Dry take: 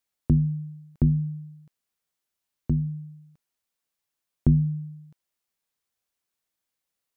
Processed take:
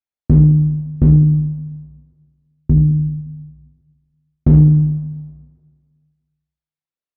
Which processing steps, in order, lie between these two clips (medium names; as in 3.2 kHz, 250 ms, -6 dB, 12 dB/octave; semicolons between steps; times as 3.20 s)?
resonances exaggerated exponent 2; gate with hold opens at -47 dBFS; in parallel at +1.5 dB: peak limiter -18 dBFS, peak gain reduction 8 dB; on the sum: overload inside the chain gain 11 dB; distance through air 150 m; on a send: delay 81 ms -9 dB; on the sum: plate-style reverb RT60 1.7 s, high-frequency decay 0.75×, DRR 7.5 dB; loudspeaker Doppler distortion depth 0.43 ms; trim +5 dB